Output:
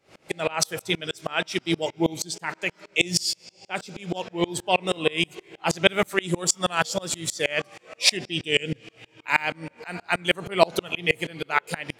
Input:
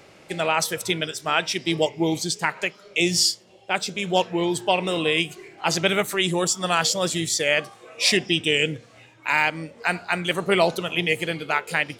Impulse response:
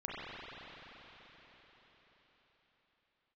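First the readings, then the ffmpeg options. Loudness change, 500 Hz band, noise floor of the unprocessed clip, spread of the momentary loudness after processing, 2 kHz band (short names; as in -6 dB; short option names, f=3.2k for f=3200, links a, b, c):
-2.5 dB, -2.5 dB, -51 dBFS, 12 LU, -2.5 dB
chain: -filter_complex "[0:a]asplit=2[a][b];[1:a]atrim=start_sample=2205,asetrate=88200,aresample=44100,adelay=149[c];[b][c]afir=irnorm=-1:irlink=0,volume=-22dB[d];[a][d]amix=inputs=2:normalize=0,aeval=exprs='val(0)*pow(10,-29*if(lt(mod(-6.3*n/s,1),2*abs(-6.3)/1000),1-mod(-6.3*n/s,1)/(2*abs(-6.3)/1000),(mod(-6.3*n/s,1)-2*abs(-6.3)/1000)/(1-2*abs(-6.3)/1000))/20)':c=same,volume=5.5dB"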